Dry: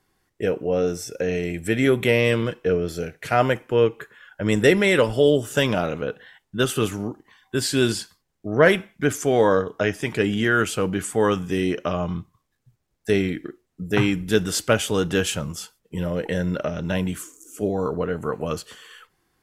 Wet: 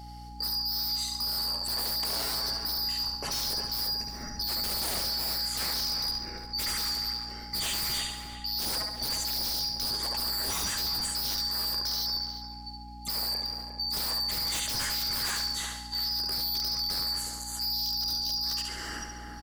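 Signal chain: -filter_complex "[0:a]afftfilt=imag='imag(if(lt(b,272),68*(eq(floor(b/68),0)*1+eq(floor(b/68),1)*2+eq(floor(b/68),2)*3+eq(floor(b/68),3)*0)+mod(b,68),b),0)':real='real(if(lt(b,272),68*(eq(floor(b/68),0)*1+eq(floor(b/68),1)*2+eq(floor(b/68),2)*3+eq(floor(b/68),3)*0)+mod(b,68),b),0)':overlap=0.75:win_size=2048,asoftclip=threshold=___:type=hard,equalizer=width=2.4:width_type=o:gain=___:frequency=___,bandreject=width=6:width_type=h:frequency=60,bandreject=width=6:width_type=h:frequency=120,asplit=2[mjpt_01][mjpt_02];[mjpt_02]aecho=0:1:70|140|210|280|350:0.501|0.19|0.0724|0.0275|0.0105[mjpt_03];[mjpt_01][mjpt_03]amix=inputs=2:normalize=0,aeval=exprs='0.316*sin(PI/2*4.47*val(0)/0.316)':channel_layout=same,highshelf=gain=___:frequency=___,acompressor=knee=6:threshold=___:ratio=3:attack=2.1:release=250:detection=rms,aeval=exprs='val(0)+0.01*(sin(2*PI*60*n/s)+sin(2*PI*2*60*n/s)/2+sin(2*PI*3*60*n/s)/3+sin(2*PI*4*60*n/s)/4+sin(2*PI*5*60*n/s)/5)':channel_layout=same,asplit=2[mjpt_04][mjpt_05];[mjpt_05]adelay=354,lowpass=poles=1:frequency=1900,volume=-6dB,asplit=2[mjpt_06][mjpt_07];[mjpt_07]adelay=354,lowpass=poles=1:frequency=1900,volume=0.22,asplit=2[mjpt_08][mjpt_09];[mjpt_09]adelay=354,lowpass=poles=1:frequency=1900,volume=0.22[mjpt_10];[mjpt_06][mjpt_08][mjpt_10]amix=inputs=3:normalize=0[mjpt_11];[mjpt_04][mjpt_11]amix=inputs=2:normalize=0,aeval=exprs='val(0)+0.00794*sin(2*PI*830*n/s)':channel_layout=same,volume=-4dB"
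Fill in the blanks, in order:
-15.5dB, -7, 250, -4, 11000, -30dB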